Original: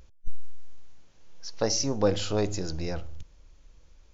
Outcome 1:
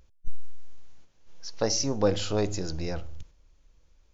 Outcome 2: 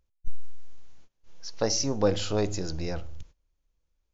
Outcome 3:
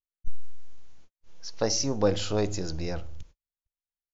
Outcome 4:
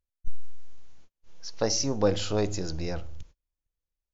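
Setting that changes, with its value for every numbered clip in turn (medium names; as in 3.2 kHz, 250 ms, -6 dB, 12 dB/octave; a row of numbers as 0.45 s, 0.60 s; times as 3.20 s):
gate, range: -6 dB, -21 dB, -53 dB, -34 dB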